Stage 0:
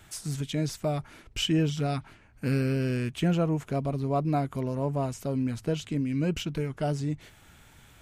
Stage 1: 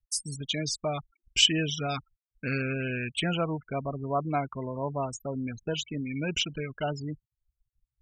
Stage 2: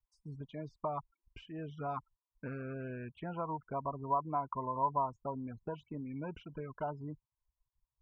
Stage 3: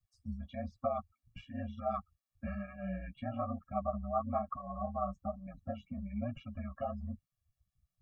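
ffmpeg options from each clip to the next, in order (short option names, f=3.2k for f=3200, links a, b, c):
-af "afftfilt=real='re*gte(hypot(re,im),0.0158)':imag='im*gte(hypot(re,im),0.0158)':win_size=1024:overlap=0.75,tiltshelf=f=880:g=-8.5,anlmdn=0.0251,volume=2dB"
-af "acompressor=threshold=-31dB:ratio=5,lowpass=f=1k:t=q:w=10,volume=-7dB"
-af "aeval=exprs='val(0)*sin(2*PI*64*n/s)':c=same,flanger=delay=7.3:depth=9.2:regen=-10:speed=1.1:shape=sinusoidal,afftfilt=real='re*eq(mod(floor(b*sr/1024/270),2),0)':imag='im*eq(mod(floor(b*sr/1024/270),2),0)':win_size=1024:overlap=0.75,volume=10.5dB"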